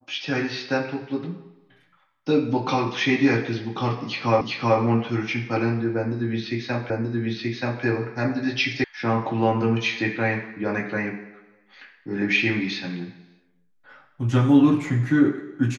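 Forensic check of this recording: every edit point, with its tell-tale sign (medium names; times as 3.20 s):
4.41 s: repeat of the last 0.38 s
6.90 s: repeat of the last 0.93 s
8.84 s: sound stops dead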